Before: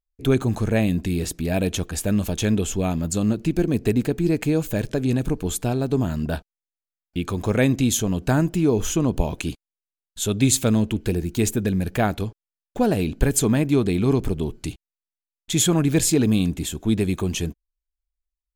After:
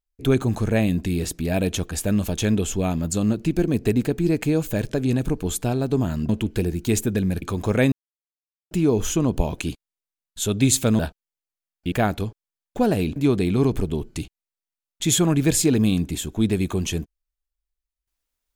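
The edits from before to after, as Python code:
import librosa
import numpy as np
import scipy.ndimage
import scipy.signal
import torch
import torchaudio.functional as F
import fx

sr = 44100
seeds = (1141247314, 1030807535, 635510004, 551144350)

y = fx.edit(x, sr, fx.swap(start_s=6.29, length_s=0.93, other_s=10.79, other_length_s=1.13),
    fx.silence(start_s=7.72, length_s=0.79),
    fx.cut(start_s=13.16, length_s=0.48), tone=tone)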